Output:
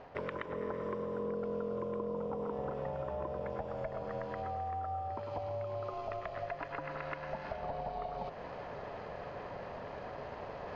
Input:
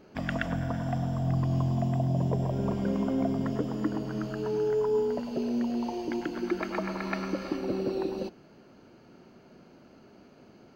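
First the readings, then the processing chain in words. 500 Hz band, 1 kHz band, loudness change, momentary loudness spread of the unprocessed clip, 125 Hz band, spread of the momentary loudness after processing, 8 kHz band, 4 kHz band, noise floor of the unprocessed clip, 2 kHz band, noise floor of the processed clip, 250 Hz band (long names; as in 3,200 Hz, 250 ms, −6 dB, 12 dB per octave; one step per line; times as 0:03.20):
−5.5 dB, −0.5 dB, −9.5 dB, 6 LU, −16.0 dB, 7 LU, can't be measured, −11.0 dB, −56 dBFS, −6.5 dB, −46 dBFS, −16.0 dB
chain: reversed playback
upward compression, threshold −31 dBFS
reversed playback
ring modulation 340 Hz
spectral tilt +2.5 dB per octave
downward compressor 6 to 1, threshold −41 dBFS, peak gain reduction 14 dB
low-pass filter 1,900 Hz 12 dB per octave
parametric band 420 Hz +9 dB 0.21 octaves
level +5 dB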